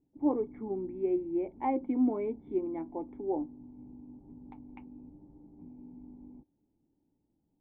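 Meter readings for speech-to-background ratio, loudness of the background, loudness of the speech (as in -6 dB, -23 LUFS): 18.0 dB, -51.0 LUFS, -33.0 LUFS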